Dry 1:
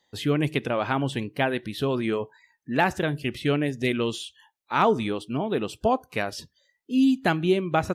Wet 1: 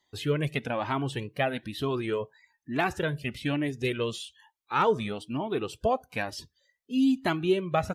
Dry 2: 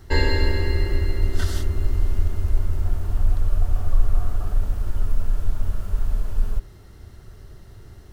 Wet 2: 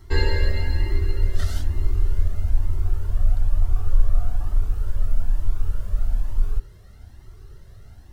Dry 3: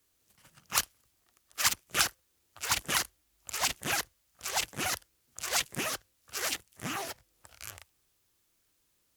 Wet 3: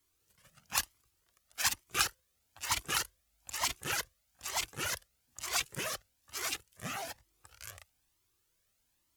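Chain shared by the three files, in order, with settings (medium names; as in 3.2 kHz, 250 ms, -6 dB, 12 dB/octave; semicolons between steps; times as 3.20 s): Shepard-style flanger rising 1.1 Hz; trim +1 dB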